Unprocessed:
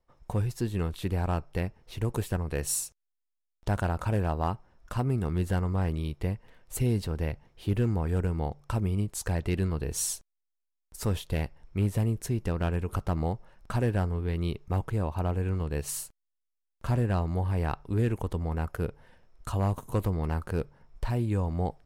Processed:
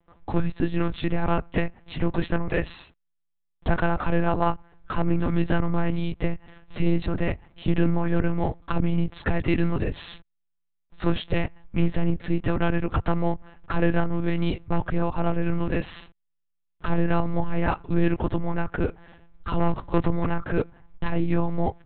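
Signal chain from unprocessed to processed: dynamic bell 1.8 kHz, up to +4 dB, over -53 dBFS, Q 1.5; monotone LPC vocoder at 8 kHz 170 Hz; trim +6.5 dB

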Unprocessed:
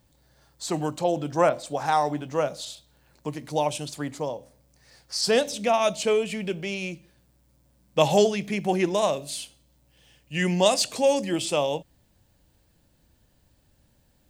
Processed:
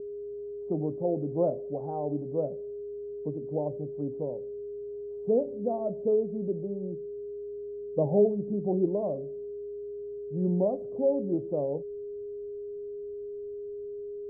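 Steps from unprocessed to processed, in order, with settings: whistle 410 Hz -33 dBFS; inverse Chebyshev low-pass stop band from 1.9 kHz, stop band 60 dB; trim -2 dB

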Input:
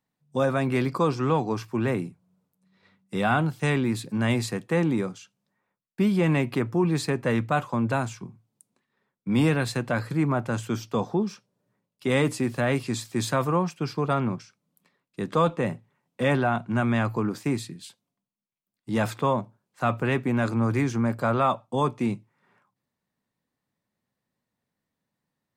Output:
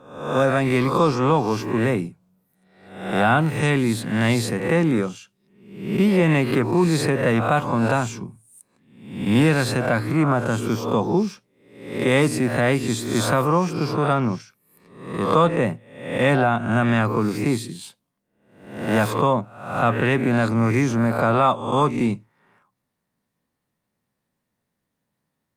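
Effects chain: reverse spectral sustain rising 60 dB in 0.69 s; trim +4 dB; Opus 48 kbps 48 kHz

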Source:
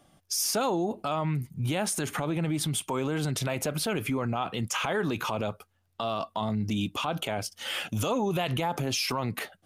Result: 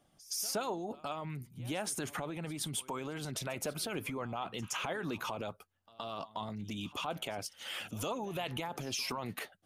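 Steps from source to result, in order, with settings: harmonic-percussive split harmonic -7 dB; reverse echo 119 ms -19.5 dB; trim -6 dB

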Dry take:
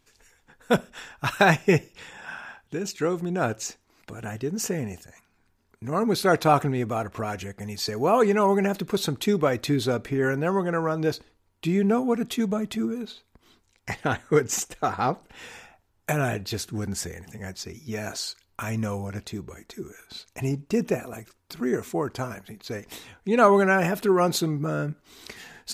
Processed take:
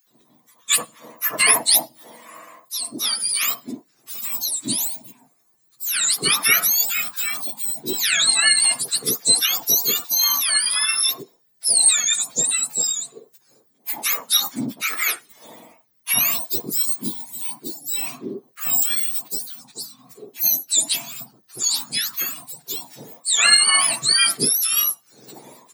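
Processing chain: spectrum inverted on a logarithmic axis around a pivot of 1.3 kHz; RIAA curve recording; bands offset in time highs, lows 70 ms, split 1.2 kHz; dynamic bell 1.9 kHz, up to +6 dB, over -41 dBFS, Q 2.3; trim +1 dB

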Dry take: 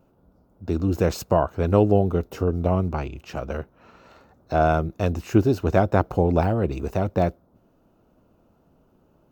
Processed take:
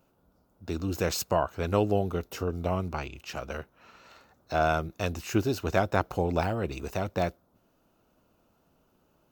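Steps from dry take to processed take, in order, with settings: tilt shelf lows -6.5 dB, about 1.2 kHz; trim -2.5 dB

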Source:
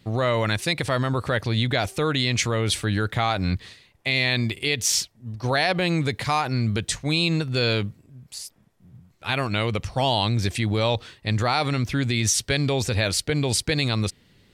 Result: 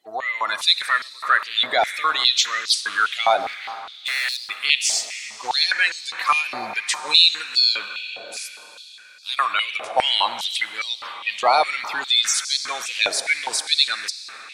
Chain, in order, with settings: coarse spectral quantiser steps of 30 dB; level rider gain up to 9.5 dB; 3.42–4.50 s: overload inside the chain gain 18 dB; algorithmic reverb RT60 4.9 s, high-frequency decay 0.85×, pre-delay 20 ms, DRR 9.5 dB; step-sequenced high-pass 4.9 Hz 710–4700 Hz; trim -6 dB

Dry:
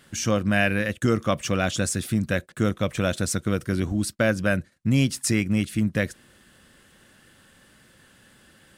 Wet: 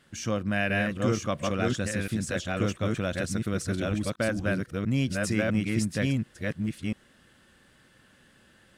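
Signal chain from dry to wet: chunks repeated in reverse 693 ms, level -1 dB; treble shelf 8.9 kHz -9.5 dB; trim -6 dB

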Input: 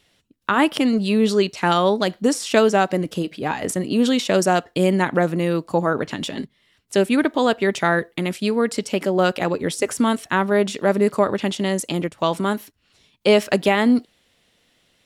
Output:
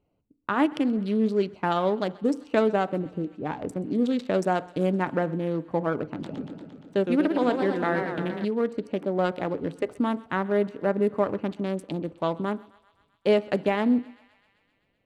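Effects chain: local Wiener filter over 25 samples; treble shelf 3.1 kHz -10.5 dB; thinning echo 129 ms, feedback 75%, high-pass 700 Hz, level -21 dB; FDN reverb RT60 0.4 s, low-frequency decay 1.25×, high-frequency decay 0.3×, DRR 15 dB; 6.03–8.45 s: modulated delay 116 ms, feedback 71%, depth 194 cents, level -6.5 dB; trim -5.5 dB

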